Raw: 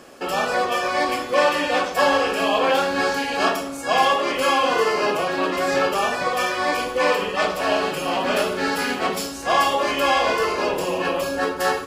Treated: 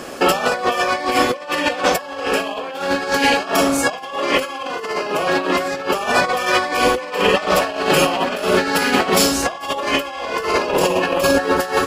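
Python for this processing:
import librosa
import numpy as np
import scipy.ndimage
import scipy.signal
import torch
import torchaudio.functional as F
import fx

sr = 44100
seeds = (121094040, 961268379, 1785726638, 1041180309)

y = fx.over_compress(x, sr, threshold_db=-26.0, ratio=-0.5)
y = F.gain(torch.from_numpy(y), 8.0).numpy()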